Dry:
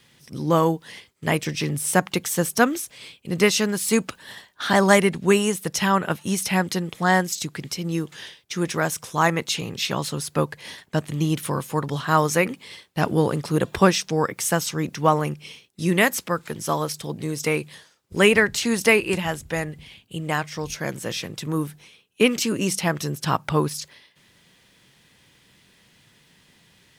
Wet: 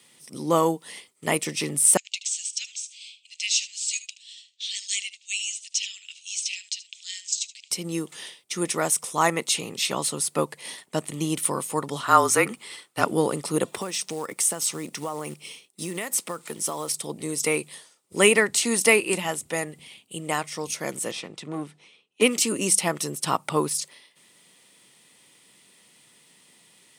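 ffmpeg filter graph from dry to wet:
-filter_complex "[0:a]asettb=1/sr,asplit=3[s0][s1][s2];[s0]atrim=end=1.974[s3];[s1]atrim=start=1.97:end=7.71,asetpts=PTS-STARTPTS,afade=t=in:d=0.004:c=qsin,afade=t=out:st=5.736:d=0.004:c=qsin,asuperpass=centerf=4400:order=12:qfactor=0.86,aecho=1:1:76:0.168,atrim=end_sample=253134[s4];[s2]atrim=start=7.706[s5];[s3][s4]acrossfade=d=0.004:c1=hsin:c2=qsin[s6];[s6][s5]acrossfade=d=0.004:c1=qsin:c2=hsin,asettb=1/sr,asplit=3[s7][s8][s9];[s7]atrim=end=12.034[s10];[s8]atrim=start=12.03:end=13.05,asetpts=PTS-STARTPTS,afade=t=in:d=0.004:c=qsin,afade=t=out:st=1.016:d=0.004:c=qsin,equalizer=f=1400:w=2.6:g=8.5,afreqshift=-34[s11];[s9]atrim=start=13.046[s12];[s10][s11]acrossfade=d=0.004:c1=hsin:c2=qsin[s13];[s13][s12]acrossfade=d=0.004:c1=qsin:c2=hsin,asettb=1/sr,asplit=3[s14][s15][s16];[s14]atrim=end=13.684[s17];[s15]atrim=start=13.68:end=16.96,asetpts=PTS-STARTPTS,afade=t=in:d=0.004:c=qsin,afade=t=out:st=3.276:d=0.004:c=qsin,lowshelf=f=86:g=-4.5,acompressor=threshold=0.0631:ratio=16:attack=3.2:release=140:knee=1:detection=peak,acrusher=bits=5:mode=log:mix=0:aa=0.000001[s18];[s16]atrim=start=16.956[s19];[s17][s18]acrossfade=d=0.004:c1=hsin:c2=qsin[s20];[s20][s19]acrossfade=d=0.004:c1=qsin:c2=hsin,asettb=1/sr,asplit=3[s21][s22][s23];[s21]atrim=end=21.114[s24];[s22]atrim=start=21.11:end=22.22,asetpts=PTS-STARTPTS,afade=t=in:d=0.004:c=qsin,afade=t=out:st=1.106:d=0.004:c=qsin,lowpass=4400,aeval=exprs='(tanh(11.2*val(0)+0.55)-tanh(0.55))/11.2':c=same[s25];[s23]atrim=start=22.216[s26];[s24][s25]acrossfade=d=0.004:c1=hsin:c2=qsin[s27];[s27][s26]acrossfade=d=0.004:c1=qsin:c2=hsin,highpass=230,equalizer=f=8800:w=2.3:g=13,bandreject=f=1600:w=6.2,volume=0.891"

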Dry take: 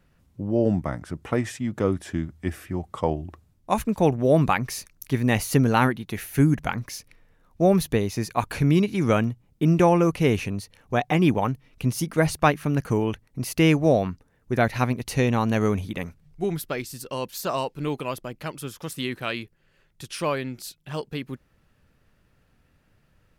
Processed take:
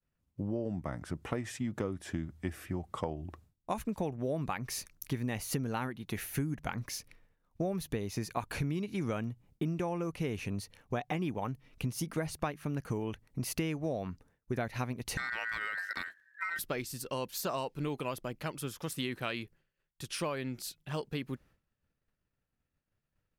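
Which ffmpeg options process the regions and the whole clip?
-filter_complex "[0:a]asettb=1/sr,asplit=3[s0][s1][s2];[s0]atrim=end=15.174[s3];[s1]atrim=start=15.17:end=16.59,asetpts=PTS-STARTPTS,afade=t=in:d=0.004:c=qsin,afade=t=out:st=1.416:d=0.004:c=qsin,aeval=exprs='val(0)*sin(2*PI*1700*n/s)':c=same,acompressor=threshold=0.0501:ratio=6:attack=3.2:release=140:knee=1:detection=peak[s4];[s2]atrim=start=16.586[s5];[s3][s4]acrossfade=d=0.004:c1=hsin:c2=qsin[s6];[s6][s5]acrossfade=d=0.004:c1=qsin:c2=hsin,agate=range=0.0224:threshold=0.00316:ratio=3:detection=peak,acompressor=threshold=0.0447:ratio=10,volume=0.668"

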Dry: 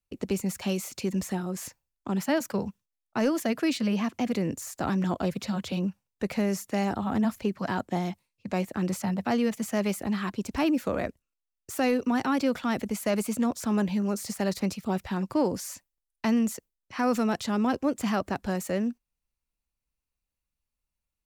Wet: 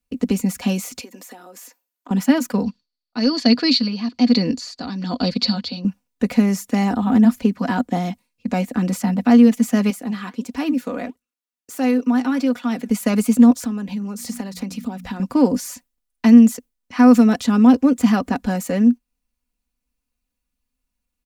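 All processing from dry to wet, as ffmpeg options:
-filter_complex "[0:a]asettb=1/sr,asplit=3[s0][s1][s2];[s0]atrim=end=1.014[s3];[s1]atrim=start=1.01:end=2.11,asetpts=PTS-STARTPTS,afade=t=in:d=0.004:c=qsin,afade=t=out:st=1.096:d=0.004:c=qsin,highpass=f=340:w=0.5412,highpass=f=340:w=1.3066,equalizer=f=14000:w=2.5:g=10.5,acompressor=threshold=0.00562:ratio=4:attack=3.2:release=140:knee=1:detection=peak[s4];[s2]atrim=start=2.106[s5];[s3][s4]acrossfade=d=0.004:c1=hsin:c2=qsin[s6];[s6][s5]acrossfade=d=0.004:c1=qsin:c2=hsin,asettb=1/sr,asplit=3[s7][s8][s9];[s7]atrim=end=2.634[s10];[s8]atrim=start=2.63:end=5.85,asetpts=PTS-STARTPTS,afade=t=in:d=0.004:c=qsin,afade=t=out:st=3.216:d=0.004:c=qsin,tremolo=f=1.1:d=0.71,lowpass=f=4500:t=q:w=14[s11];[s9]atrim=start=5.846[s12];[s10][s11]acrossfade=d=0.004:c1=hsin:c2=qsin[s13];[s13][s12]acrossfade=d=0.004:c1=qsin:c2=hsin,asettb=1/sr,asplit=3[s14][s15][s16];[s14]atrim=end=9.904[s17];[s15]atrim=start=9.9:end=12.9,asetpts=PTS-STARTPTS,afade=t=in:d=0.004:c=qsin,afade=t=out:st=2.996:d=0.004:c=qsin,highpass=f=270:p=1,flanger=delay=0.2:depth=8.4:regen=83:speed=1.5:shape=triangular[s18];[s16]atrim=start=12.896[s19];[s17][s18]acrossfade=d=0.004:c1=hsin:c2=qsin[s20];[s20][s19]acrossfade=d=0.004:c1=qsin:c2=hsin,asettb=1/sr,asplit=3[s21][s22][s23];[s21]atrim=end=13.604[s24];[s22]atrim=start=13.6:end=15.2,asetpts=PTS-STARTPTS,afade=t=in:d=0.004:c=qsin,afade=t=out:st=1.596:d=0.004:c=qsin,bandreject=f=60:t=h:w=6,bandreject=f=120:t=h:w=6,bandreject=f=180:t=h:w=6,bandreject=f=240:t=h:w=6,bandreject=f=300:t=h:w=6,acompressor=threshold=0.02:ratio=6:attack=3.2:release=140:knee=1:detection=peak[s25];[s23]atrim=start=15.196[s26];[s24][s25]acrossfade=d=0.004:c1=hsin:c2=qsin[s27];[s27][s26]acrossfade=d=0.004:c1=qsin:c2=hsin,equalizer=f=250:w=3.8:g=9.5,aecho=1:1:4.1:0.55,volume=1.78"

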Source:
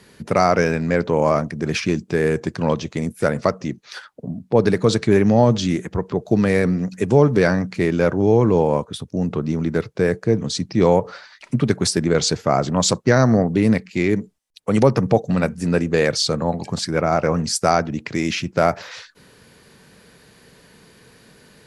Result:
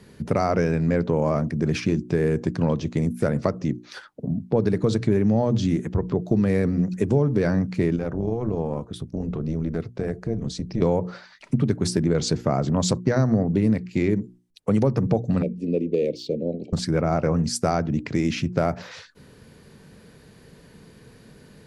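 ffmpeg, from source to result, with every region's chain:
-filter_complex "[0:a]asettb=1/sr,asplit=3[s0][s1][s2];[s0]atrim=end=7.964[s3];[s1]atrim=start=7.96:end=10.82,asetpts=PTS-STARTPTS,afade=t=in:d=0.004:c=qsin,afade=t=out:st=2.856:d=0.004:c=qsin,acompressor=threshold=0.0501:ratio=2:attack=3.2:release=140:knee=1:detection=peak,tremolo=f=240:d=0.571[s4];[s2]atrim=start=10.816[s5];[s3][s4]acrossfade=d=0.004:c1=hsin:c2=qsin[s6];[s6][s5]acrossfade=d=0.004:c1=qsin:c2=hsin,asettb=1/sr,asplit=3[s7][s8][s9];[s7]atrim=end=15.424[s10];[s8]atrim=start=15.42:end=16.73,asetpts=PTS-STARTPTS,afade=t=in:d=0.004:c=qsin,afade=t=out:st=1.306:d=0.004:c=qsin,acrossover=split=240 3000:gain=0.0891 1 0.126[s11][s12][s13];[s11][s12][s13]amix=inputs=3:normalize=0,adynamicsmooth=sensitivity=2.5:basefreq=7200,asuperstop=centerf=1200:order=8:qfactor=0.58[s14];[s9]atrim=start=16.726[s15];[s10][s14]acrossfade=d=0.004:c1=hsin:c2=qsin[s16];[s16][s15]acrossfade=d=0.004:c1=qsin:c2=hsin,lowshelf=f=450:g=11.5,bandreject=f=60:t=h:w=6,bandreject=f=120:t=h:w=6,bandreject=f=180:t=h:w=6,bandreject=f=240:t=h:w=6,bandreject=f=300:t=h:w=6,bandreject=f=360:t=h:w=6,acompressor=threshold=0.224:ratio=3,volume=0.531"

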